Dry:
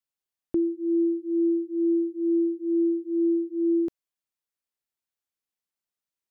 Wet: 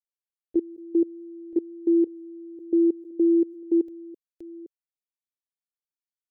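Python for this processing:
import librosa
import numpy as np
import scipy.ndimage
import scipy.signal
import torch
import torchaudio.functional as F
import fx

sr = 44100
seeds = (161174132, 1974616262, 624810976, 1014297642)

y = fx.reverse_delay(x, sr, ms=518, wet_db=-6.0)
y = fx.level_steps(y, sr, step_db=22)
y = fx.fixed_phaser(y, sr, hz=460.0, stages=4)
y = F.gain(torch.from_numpy(y), 5.5).numpy()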